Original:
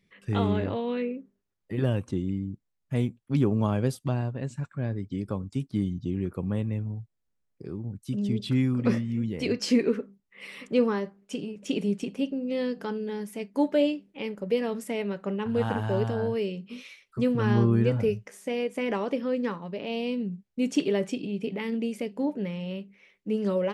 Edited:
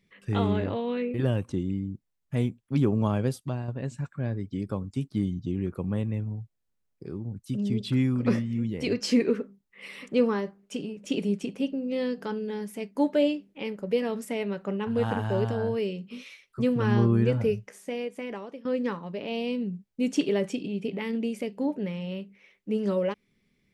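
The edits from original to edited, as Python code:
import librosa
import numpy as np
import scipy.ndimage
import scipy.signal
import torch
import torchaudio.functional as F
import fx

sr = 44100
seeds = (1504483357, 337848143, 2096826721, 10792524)

y = fx.edit(x, sr, fx.cut(start_s=1.14, length_s=0.59),
    fx.fade_out_to(start_s=3.76, length_s=0.51, floor_db=-6.0),
    fx.fade_out_to(start_s=18.18, length_s=1.06, floor_db=-17.0), tone=tone)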